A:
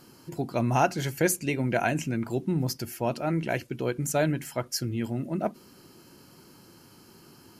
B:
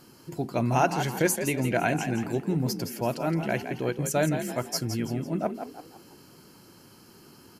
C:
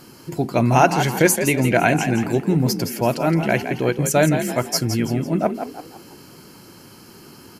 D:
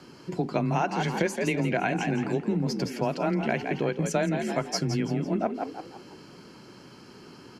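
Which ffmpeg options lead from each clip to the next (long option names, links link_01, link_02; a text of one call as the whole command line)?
ffmpeg -i in.wav -filter_complex "[0:a]asplit=5[link_01][link_02][link_03][link_04][link_05];[link_02]adelay=167,afreqshift=45,volume=-8.5dB[link_06];[link_03]adelay=334,afreqshift=90,volume=-16.5dB[link_07];[link_04]adelay=501,afreqshift=135,volume=-24.4dB[link_08];[link_05]adelay=668,afreqshift=180,volume=-32.4dB[link_09];[link_01][link_06][link_07][link_08][link_09]amix=inputs=5:normalize=0" out.wav
ffmpeg -i in.wav -af "equalizer=frequency=2200:width=4.1:gain=2.5,volume=8.5dB" out.wav
ffmpeg -i in.wav -af "lowpass=5100,acompressor=threshold=-19dB:ratio=6,afreqshift=18,volume=-3.5dB" out.wav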